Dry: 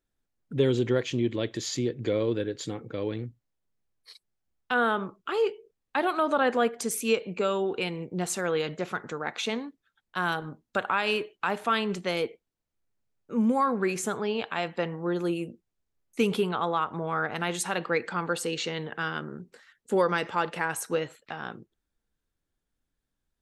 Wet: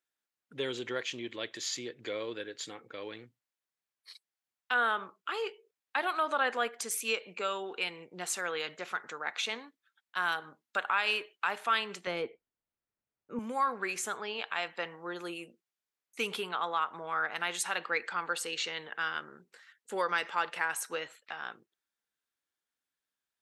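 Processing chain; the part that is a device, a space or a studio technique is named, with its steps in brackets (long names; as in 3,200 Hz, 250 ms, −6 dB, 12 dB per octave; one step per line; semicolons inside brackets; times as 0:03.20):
filter by subtraction (in parallel: low-pass filter 1,700 Hz 12 dB per octave + polarity inversion)
0:12.07–0:13.39: on the sum: spectral tilt −4 dB per octave
level −2.5 dB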